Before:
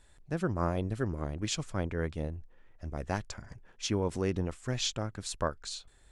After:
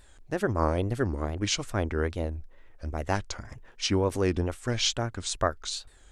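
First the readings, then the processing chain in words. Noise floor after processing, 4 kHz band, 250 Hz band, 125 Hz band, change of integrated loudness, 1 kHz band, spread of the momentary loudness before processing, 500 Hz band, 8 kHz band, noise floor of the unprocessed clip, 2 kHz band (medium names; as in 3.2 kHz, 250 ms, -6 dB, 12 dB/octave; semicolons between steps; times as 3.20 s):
-54 dBFS, +6.5 dB, +4.0 dB, +3.5 dB, +5.0 dB, +6.0 dB, 11 LU, +5.5 dB, +5.0 dB, -60 dBFS, +6.5 dB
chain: peaking EQ 160 Hz -11.5 dB 0.4 oct; wow and flutter 150 cents; trim +6 dB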